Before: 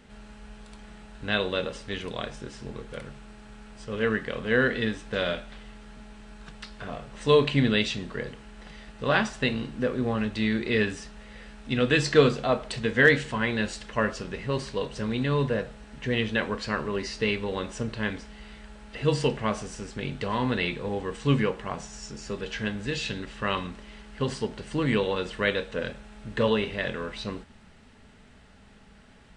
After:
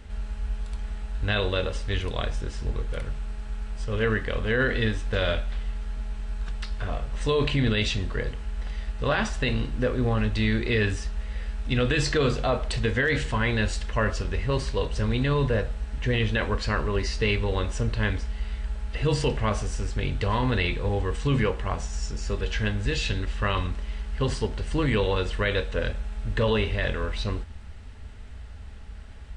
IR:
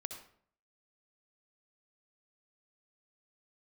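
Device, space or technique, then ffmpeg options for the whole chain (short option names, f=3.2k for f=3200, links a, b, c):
car stereo with a boomy subwoofer: -af "lowshelf=f=110:t=q:w=1.5:g=13.5,alimiter=limit=-17dB:level=0:latency=1:release=16,volume=2.5dB"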